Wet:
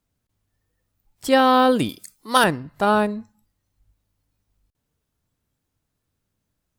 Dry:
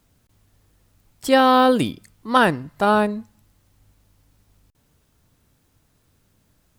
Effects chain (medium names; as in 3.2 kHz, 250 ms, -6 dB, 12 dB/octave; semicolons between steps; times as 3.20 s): spectral noise reduction 13 dB; 1.89–2.44 s: tone controls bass -9 dB, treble +15 dB; trim -1 dB